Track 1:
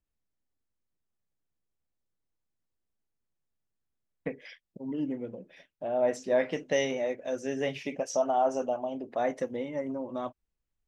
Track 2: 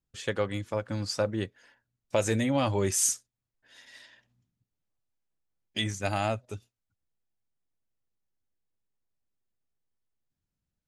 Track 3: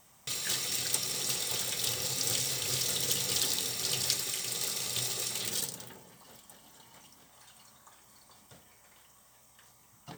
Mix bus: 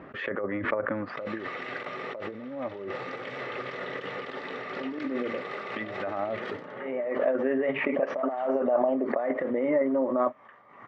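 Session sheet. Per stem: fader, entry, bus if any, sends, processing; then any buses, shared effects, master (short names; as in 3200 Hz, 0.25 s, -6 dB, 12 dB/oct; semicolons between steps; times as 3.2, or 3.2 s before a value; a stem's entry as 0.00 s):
+1.0 dB, 0.00 s, no send, low-pass opened by the level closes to 1000 Hz, open at -23.5 dBFS; negative-ratio compressor -32 dBFS, ratio -0.5; auto duck -16 dB, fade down 0.45 s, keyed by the second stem
+1.0 dB, 0.00 s, no send, treble ducked by the level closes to 720 Hz, closed at -23.5 dBFS
+2.5 dB, 0.90 s, no send, dry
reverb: off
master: negative-ratio compressor -30 dBFS, ratio -0.5; speaker cabinet 230–2200 Hz, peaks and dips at 260 Hz +4 dB, 390 Hz +4 dB, 590 Hz +8 dB, 1200 Hz +9 dB, 1900 Hz +7 dB; backwards sustainer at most 57 dB/s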